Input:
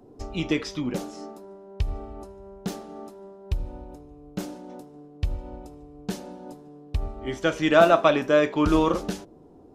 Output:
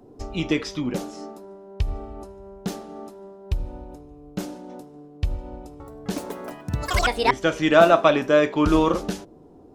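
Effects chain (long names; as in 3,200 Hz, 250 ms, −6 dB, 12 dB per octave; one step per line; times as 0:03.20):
0:05.54–0:07.80: delay with pitch and tempo change per echo 259 ms, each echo +7 semitones, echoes 3
level +2 dB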